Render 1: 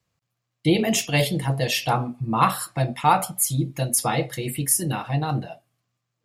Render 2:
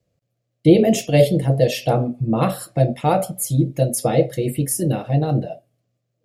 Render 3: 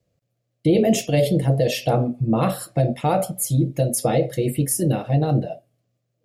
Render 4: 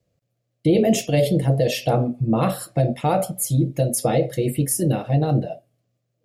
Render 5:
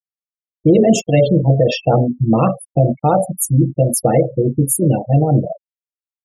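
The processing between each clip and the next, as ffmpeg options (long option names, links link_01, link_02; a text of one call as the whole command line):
ffmpeg -i in.wav -af "lowshelf=frequency=750:width_type=q:width=3:gain=8.5,volume=-3dB" out.wav
ffmpeg -i in.wav -af "alimiter=limit=-9.5dB:level=0:latency=1:release=37" out.wav
ffmpeg -i in.wav -af anull out.wav
ffmpeg -i in.wav -filter_complex "[0:a]asplit=2[link_01][link_02];[link_02]adelay=90,highpass=300,lowpass=3400,asoftclip=type=hard:threshold=-19dB,volume=-29dB[link_03];[link_01][link_03]amix=inputs=2:normalize=0,afftfilt=real='re*gte(hypot(re,im),0.0708)':imag='im*gte(hypot(re,im),0.0708)':win_size=1024:overlap=0.75,volume=6dB" out.wav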